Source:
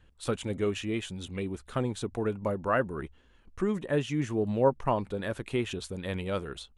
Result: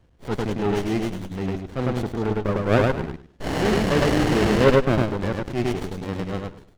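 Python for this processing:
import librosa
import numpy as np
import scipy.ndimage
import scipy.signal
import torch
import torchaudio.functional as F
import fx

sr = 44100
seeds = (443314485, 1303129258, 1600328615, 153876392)

y = fx.fade_out_tail(x, sr, length_s=0.88)
y = scipy.signal.sosfilt(scipy.signal.butter(2, 60.0, 'highpass', fs=sr, output='sos'), y)
y = fx.high_shelf(y, sr, hz=3600.0, db=10.5)
y = fx.spec_paint(y, sr, seeds[0], shape='noise', start_s=3.4, length_s=1.26, low_hz=1500.0, high_hz=3100.0, level_db=-27.0)
y = scipy.signal.sosfilt(scipy.signal.cheby1(5, 1.0, 6200.0, 'lowpass', fs=sr, output='sos'), y)
y = fx.echo_feedback(y, sr, ms=103, feedback_pct=29, wet_db=-3.0)
y = fx.transient(y, sr, attack_db=-9, sustain_db=-5)
y = fx.dynamic_eq(y, sr, hz=990.0, q=0.79, threshold_db=-42.0, ratio=4.0, max_db=5)
y = fx.running_max(y, sr, window=33)
y = y * 10.0 ** (6.5 / 20.0)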